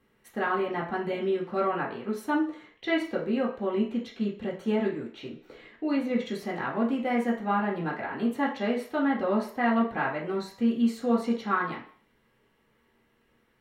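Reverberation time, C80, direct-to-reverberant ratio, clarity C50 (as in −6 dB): 0.50 s, 12.0 dB, −6.0 dB, 7.5 dB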